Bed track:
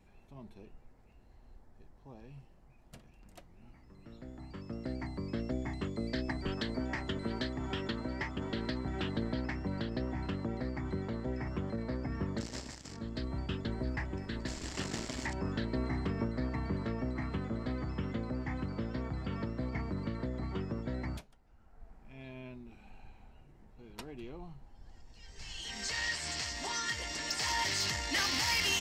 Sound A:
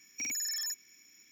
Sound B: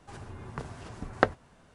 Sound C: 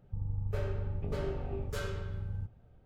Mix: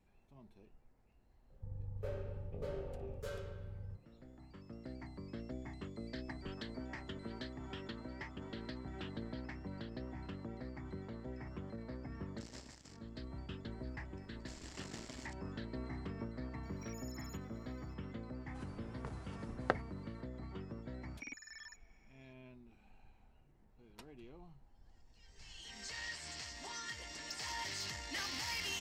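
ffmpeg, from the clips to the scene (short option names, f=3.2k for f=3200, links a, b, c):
-filter_complex "[1:a]asplit=2[a][b];[0:a]volume=-9.5dB[c];[3:a]equalizer=f=520:w=5:g=14.5[d];[a]acompressor=threshold=-40dB:ratio=6:attack=3.2:release=140:knee=1:detection=peak[e];[b]lowpass=2.1k[f];[d]atrim=end=2.85,asetpts=PTS-STARTPTS,volume=-10dB,afade=t=in:d=0.004:c=hsin,afade=t=out:st=2.846:d=0.004:c=hsin,adelay=1500[g];[e]atrim=end=1.31,asetpts=PTS-STARTPTS,volume=-15dB,afade=t=in:d=0.004:c=hsin,afade=t=out:st=1.306:d=0.004:c=hsin,adelay=16630[h];[2:a]atrim=end=1.74,asetpts=PTS-STARTPTS,volume=-10.5dB,afade=t=in:d=0.004:c=hsin,afade=t=out:st=1.736:d=0.004:c=hsin,adelay=18470[i];[f]atrim=end=1.31,asetpts=PTS-STARTPTS,volume=-3.5dB,afade=t=in:d=0.004:c=hsin,afade=t=out:st=1.306:d=0.004:c=hsin,adelay=21020[j];[c][g][h][i][j]amix=inputs=5:normalize=0"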